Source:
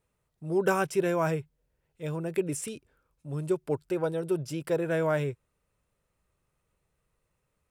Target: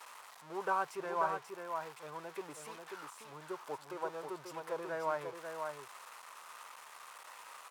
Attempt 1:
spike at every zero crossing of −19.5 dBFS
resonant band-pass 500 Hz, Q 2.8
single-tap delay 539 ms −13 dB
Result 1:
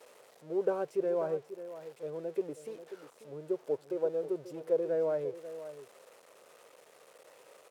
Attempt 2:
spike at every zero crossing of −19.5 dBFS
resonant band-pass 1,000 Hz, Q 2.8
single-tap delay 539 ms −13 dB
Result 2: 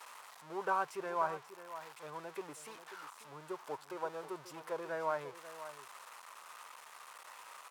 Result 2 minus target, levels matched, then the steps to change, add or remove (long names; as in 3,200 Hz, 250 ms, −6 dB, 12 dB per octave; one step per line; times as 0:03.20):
echo-to-direct −7.5 dB
change: single-tap delay 539 ms −5.5 dB